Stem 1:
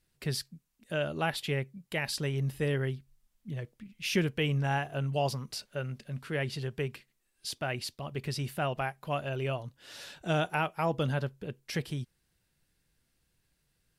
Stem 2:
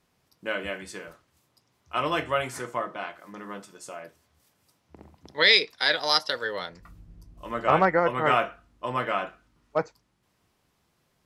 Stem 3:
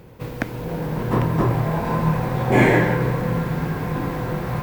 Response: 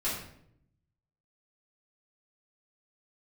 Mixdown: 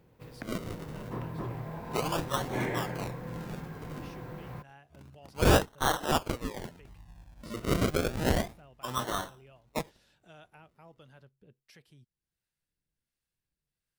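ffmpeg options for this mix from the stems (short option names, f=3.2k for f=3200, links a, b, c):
-filter_complex "[0:a]acompressor=threshold=-54dB:ratio=1.5,acrossover=split=550[a][b];[a]aeval=exprs='val(0)*(1-0.5/2+0.5/2*cos(2*PI*1.4*n/s))':c=same[c];[b]aeval=exprs='val(0)*(1-0.5/2-0.5/2*cos(2*PI*1.4*n/s))':c=same[d];[c][d]amix=inputs=2:normalize=0,volume=-12.5dB[e];[1:a]equalizer=f=530:w=0.84:g=-8,acrusher=samples=36:mix=1:aa=0.000001:lfo=1:lforange=36:lforate=0.3,volume=-2dB[f];[2:a]volume=-17.5dB[g];[e][f][g]amix=inputs=3:normalize=0"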